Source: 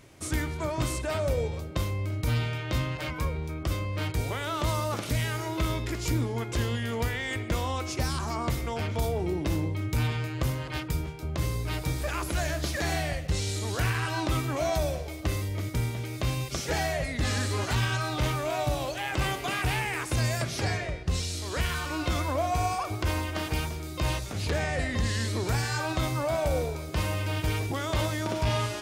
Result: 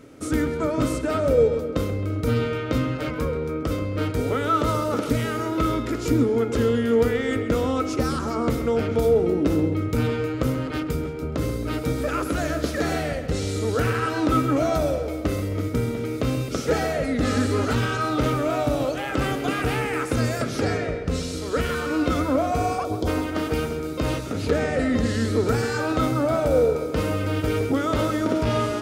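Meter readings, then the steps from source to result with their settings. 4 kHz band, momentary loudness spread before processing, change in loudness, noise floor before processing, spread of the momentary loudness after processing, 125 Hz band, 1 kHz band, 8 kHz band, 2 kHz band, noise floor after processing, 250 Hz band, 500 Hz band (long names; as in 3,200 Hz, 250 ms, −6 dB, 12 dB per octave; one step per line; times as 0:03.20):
−0.5 dB, 4 LU, +6.0 dB, −37 dBFS, 6 LU, +2.0 dB, +5.0 dB, −1.0 dB, +2.0 dB, −30 dBFS, +11.0 dB, +10.0 dB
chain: hollow resonant body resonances 270/450/1,300 Hz, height 16 dB, ringing for 35 ms
gain on a spectral selection 0:22.84–0:23.08, 1,000–3,000 Hz −19 dB
feedback echo with a low-pass in the loop 133 ms, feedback 59%, low-pass 4,100 Hz, level −11.5 dB
level −1 dB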